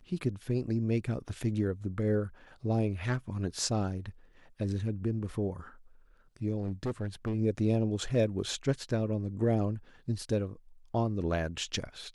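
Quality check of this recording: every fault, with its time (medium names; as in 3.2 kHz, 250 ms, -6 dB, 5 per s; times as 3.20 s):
6.58–7.34 s: clipped -28.5 dBFS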